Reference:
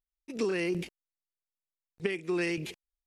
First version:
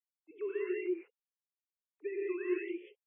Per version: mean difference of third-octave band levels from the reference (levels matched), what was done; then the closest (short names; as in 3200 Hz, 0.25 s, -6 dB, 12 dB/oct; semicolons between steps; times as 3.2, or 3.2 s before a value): 15.0 dB: sine-wave speech; non-linear reverb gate 0.22 s rising, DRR -2.5 dB; gain -9 dB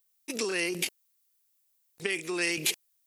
7.0 dB: in parallel at -2 dB: negative-ratio compressor -39 dBFS, ratio -1; on the sum: RIAA curve recording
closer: second